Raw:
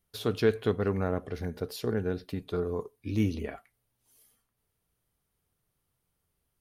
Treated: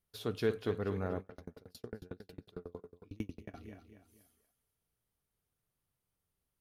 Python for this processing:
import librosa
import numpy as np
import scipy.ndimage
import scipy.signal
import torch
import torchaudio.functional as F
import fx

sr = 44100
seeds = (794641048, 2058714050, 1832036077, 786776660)

y = fx.echo_feedback(x, sr, ms=239, feedback_pct=36, wet_db=-10.5)
y = fx.tremolo_decay(y, sr, direction='decaying', hz=11.0, depth_db=36, at=(1.2, 3.54))
y = y * 10.0 ** (-7.5 / 20.0)